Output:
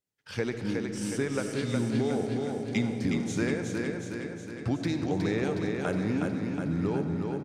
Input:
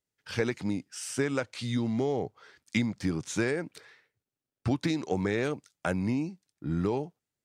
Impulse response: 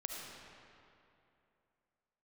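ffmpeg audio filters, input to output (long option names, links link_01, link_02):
-filter_complex "[0:a]lowshelf=frequency=68:gain=-10,aecho=1:1:365|730|1095|1460|1825|2190|2555|2920|3285:0.631|0.379|0.227|0.136|0.0818|0.0491|0.0294|0.0177|0.0106,asplit=2[link_01][link_02];[1:a]atrim=start_sample=2205,lowshelf=frequency=360:gain=11[link_03];[link_02][link_03]afir=irnorm=-1:irlink=0,volume=-2dB[link_04];[link_01][link_04]amix=inputs=2:normalize=0,volume=-7dB"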